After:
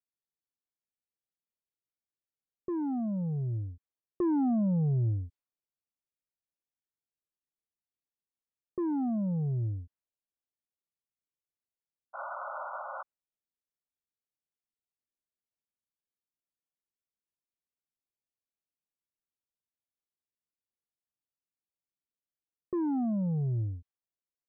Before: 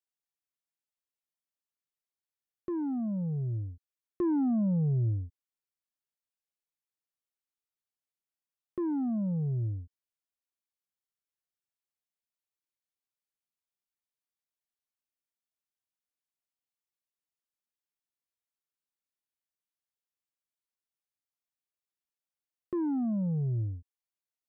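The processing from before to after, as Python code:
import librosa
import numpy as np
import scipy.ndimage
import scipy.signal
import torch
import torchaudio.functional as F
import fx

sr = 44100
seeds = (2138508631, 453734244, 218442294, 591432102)

y = fx.dynamic_eq(x, sr, hz=760.0, q=2.9, threshold_db=-55.0, ratio=4.0, max_db=6)
y = fx.spec_paint(y, sr, seeds[0], shape='noise', start_s=12.13, length_s=0.9, low_hz=530.0, high_hz=1500.0, level_db=-39.0)
y = fx.env_lowpass(y, sr, base_hz=500.0, full_db=-31.0)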